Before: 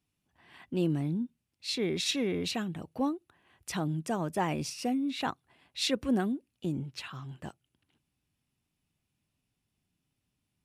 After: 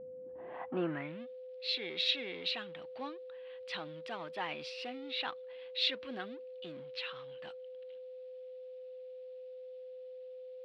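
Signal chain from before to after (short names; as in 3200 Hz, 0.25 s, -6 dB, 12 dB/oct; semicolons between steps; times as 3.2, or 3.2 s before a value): G.711 law mismatch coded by mu; band-pass sweep 210 Hz -> 4000 Hz, 0.1–1.29; whine 510 Hz -57 dBFS; air absorption 460 m; gain +13.5 dB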